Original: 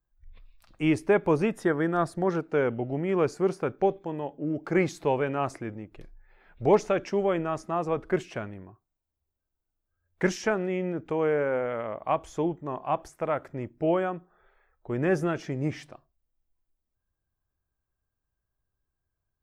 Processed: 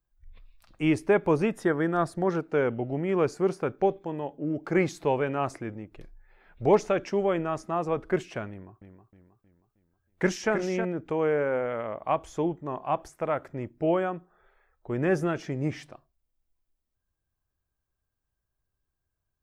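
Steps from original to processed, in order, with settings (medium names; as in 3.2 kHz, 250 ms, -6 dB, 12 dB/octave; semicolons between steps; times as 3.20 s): 8.50–10.85 s: modulated delay 315 ms, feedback 45%, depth 68 cents, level -7.5 dB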